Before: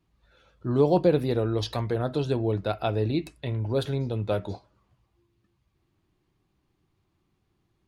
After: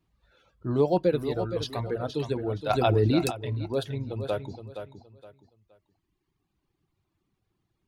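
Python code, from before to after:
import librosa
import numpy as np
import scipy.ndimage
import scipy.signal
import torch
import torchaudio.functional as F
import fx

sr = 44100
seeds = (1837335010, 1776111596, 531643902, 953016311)

y = fx.dereverb_blind(x, sr, rt60_s=2.0)
y = fx.echo_feedback(y, sr, ms=469, feedback_pct=27, wet_db=-9)
y = fx.env_flatten(y, sr, amount_pct=70, at=(2.69, 3.3), fade=0.02)
y = F.gain(torch.from_numpy(y), -1.5).numpy()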